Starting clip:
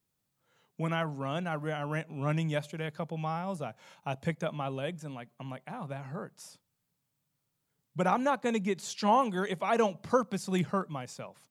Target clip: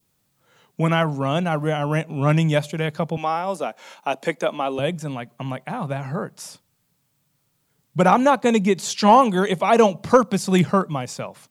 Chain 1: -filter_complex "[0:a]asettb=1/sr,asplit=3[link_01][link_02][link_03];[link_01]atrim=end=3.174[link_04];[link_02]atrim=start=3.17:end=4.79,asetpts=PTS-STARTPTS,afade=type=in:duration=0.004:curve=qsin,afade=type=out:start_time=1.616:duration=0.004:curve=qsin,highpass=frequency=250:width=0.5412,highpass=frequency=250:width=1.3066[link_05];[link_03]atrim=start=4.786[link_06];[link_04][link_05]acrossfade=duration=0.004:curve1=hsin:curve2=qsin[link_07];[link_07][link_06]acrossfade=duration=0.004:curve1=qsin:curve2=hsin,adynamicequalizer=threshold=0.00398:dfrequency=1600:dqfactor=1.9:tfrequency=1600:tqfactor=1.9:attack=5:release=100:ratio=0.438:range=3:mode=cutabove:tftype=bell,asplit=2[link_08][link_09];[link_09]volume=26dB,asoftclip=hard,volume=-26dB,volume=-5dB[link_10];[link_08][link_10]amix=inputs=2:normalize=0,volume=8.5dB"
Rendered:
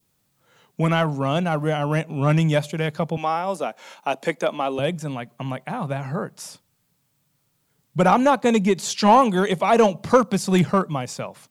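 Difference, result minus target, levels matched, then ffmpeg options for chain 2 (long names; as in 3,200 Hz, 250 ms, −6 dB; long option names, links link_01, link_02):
gain into a clipping stage and back: distortion +12 dB
-filter_complex "[0:a]asettb=1/sr,asplit=3[link_01][link_02][link_03];[link_01]atrim=end=3.174[link_04];[link_02]atrim=start=3.17:end=4.79,asetpts=PTS-STARTPTS,afade=type=in:duration=0.004:curve=qsin,afade=type=out:start_time=1.616:duration=0.004:curve=qsin,highpass=frequency=250:width=0.5412,highpass=frequency=250:width=1.3066[link_05];[link_03]atrim=start=4.786[link_06];[link_04][link_05]acrossfade=duration=0.004:curve1=hsin:curve2=qsin[link_07];[link_07][link_06]acrossfade=duration=0.004:curve1=qsin:curve2=hsin,adynamicequalizer=threshold=0.00398:dfrequency=1600:dqfactor=1.9:tfrequency=1600:tqfactor=1.9:attack=5:release=100:ratio=0.438:range=3:mode=cutabove:tftype=bell,asplit=2[link_08][link_09];[link_09]volume=19dB,asoftclip=hard,volume=-19dB,volume=-5dB[link_10];[link_08][link_10]amix=inputs=2:normalize=0,volume=8.5dB"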